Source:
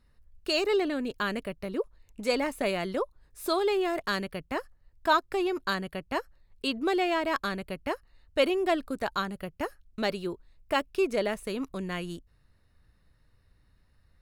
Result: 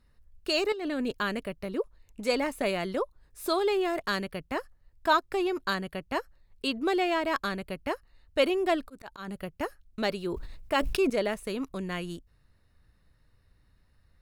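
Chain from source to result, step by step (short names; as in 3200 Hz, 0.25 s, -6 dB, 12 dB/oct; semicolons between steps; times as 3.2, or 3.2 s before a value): 0.72–1.14 negative-ratio compressor -32 dBFS, ratio -1; 8.81–9.28 auto swell 0.176 s; 10.2–11.1 sustainer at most 42 dB/s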